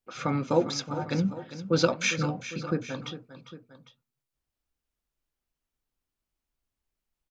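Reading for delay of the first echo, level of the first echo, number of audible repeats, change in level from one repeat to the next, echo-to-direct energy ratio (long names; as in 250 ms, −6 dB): 402 ms, −13.0 dB, 2, −4.5 dB, −11.5 dB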